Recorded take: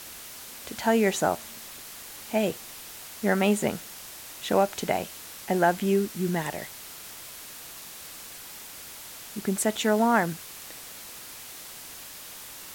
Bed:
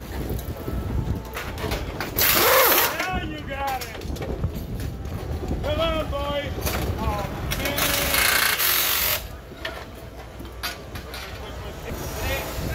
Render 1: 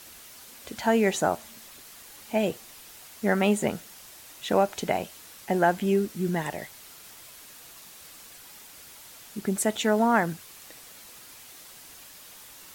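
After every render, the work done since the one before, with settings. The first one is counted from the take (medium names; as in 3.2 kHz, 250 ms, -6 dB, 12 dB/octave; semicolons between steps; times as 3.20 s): noise reduction 6 dB, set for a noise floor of -43 dBFS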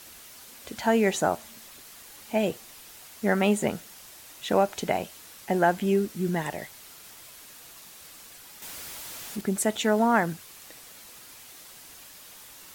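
8.62–9.41 s: jump at every zero crossing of -38 dBFS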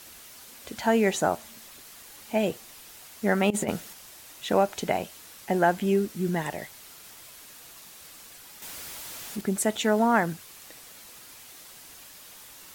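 3.50–3.93 s: compressor with a negative ratio -27 dBFS, ratio -0.5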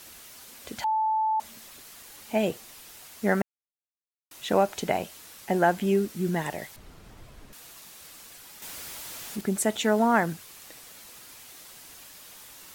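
0.84–1.40 s: bleep 874 Hz -22 dBFS; 3.42–4.31 s: mute; 6.76–7.53 s: tilt EQ -4.5 dB/octave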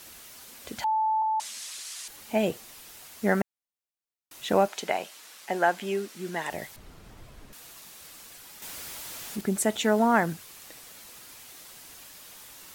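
1.22–2.08 s: frequency weighting ITU-R 468; 4.68–6.51 s: frequency weighting A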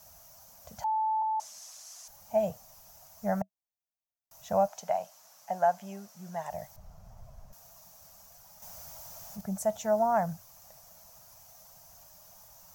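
FFT filter 100 Hz 0 dB, 190 Hz -4 dB, 310 Hz -29 dB, 440 Hz -18 dB, 640 Hz +2 dB, 2 kHz -18 dB, 3.8 kHz -19 dB, 6 kHz -3 dB, 8.8 kHz -15 dB, 16 kHz -2 dB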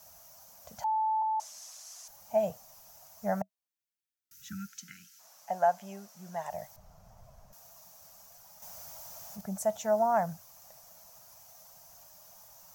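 3.68–5.20 s: spectral selection erased 350–1300 Hz; bass shelf 140 Hz -8 dB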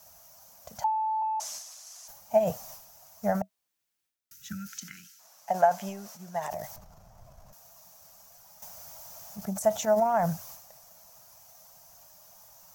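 transient shaper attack +6 dB, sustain +10 dB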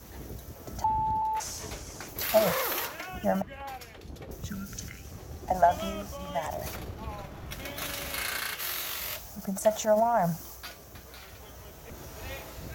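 add bed -13.5 dB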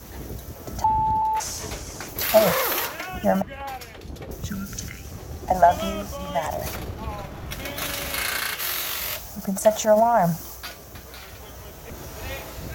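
trim +6.5 dB; peak limiter -3 dBFS, peak gain reduction 0.5 dB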